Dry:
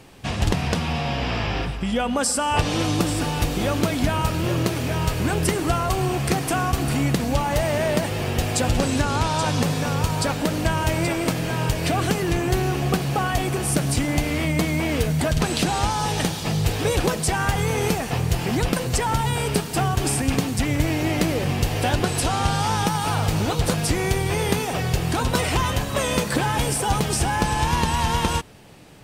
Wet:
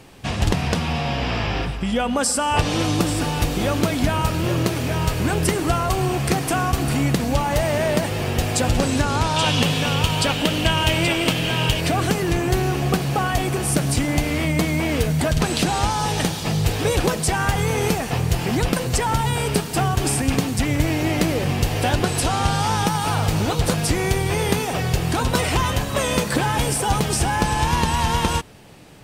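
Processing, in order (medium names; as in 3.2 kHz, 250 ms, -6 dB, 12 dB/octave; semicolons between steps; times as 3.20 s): 9.36–11.81 s: peaking EQ 3 kHz +13 dB 0.59 oct; trim +1.5 dB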